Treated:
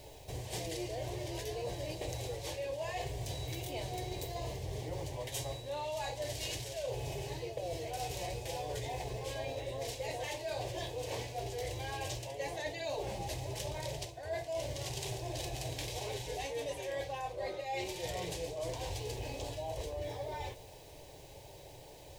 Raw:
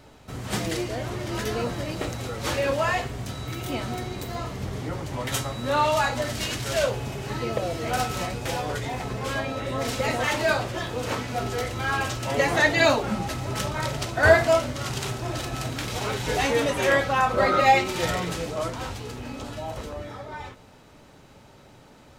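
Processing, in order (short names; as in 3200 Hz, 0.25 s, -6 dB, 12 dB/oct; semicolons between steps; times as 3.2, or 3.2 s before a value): bit-crush 10-bit; fixed phaser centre 550 Hz, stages 4; reverse; compressor 16:1, threshold -37 dBFS, peak gain reduction 26 dB; reverse; gain +1.5 dB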